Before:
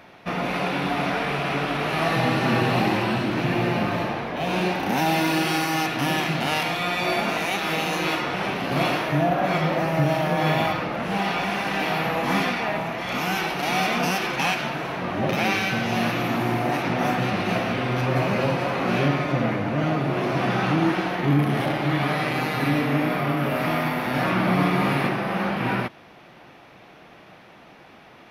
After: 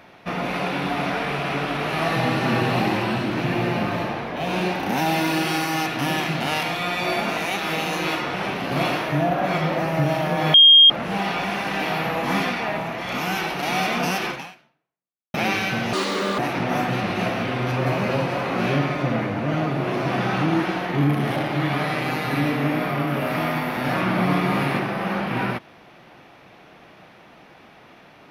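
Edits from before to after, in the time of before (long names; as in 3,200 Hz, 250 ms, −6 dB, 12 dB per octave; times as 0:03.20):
0:10.54–0:10.90: beep over 3,230 Hz −7 dBFS
0:14.30–0:15.34: fade out exponential
0:15.93–0:16.68: play speed 165%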